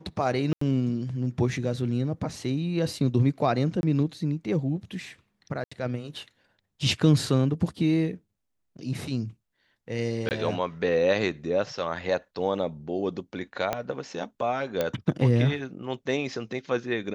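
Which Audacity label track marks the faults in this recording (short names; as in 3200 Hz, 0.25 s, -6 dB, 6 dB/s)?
0.530000	0.610000	gap 84 ms
3.810000	3.830000	gap 21 ms
5.640000	5.710000	gap 75 ms
10.290000	10.310000	gap 19 ms
13.730000	13.730000	pop -12 dBFS
14.810000	14.810000	pop -12 dBFS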